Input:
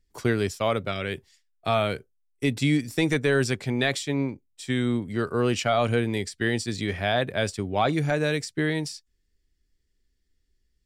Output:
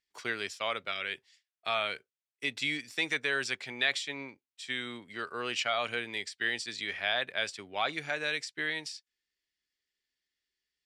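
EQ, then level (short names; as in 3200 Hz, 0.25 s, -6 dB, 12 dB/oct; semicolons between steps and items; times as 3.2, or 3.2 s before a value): band-pass 2700 Hz, Q 0.83; 0.0 dB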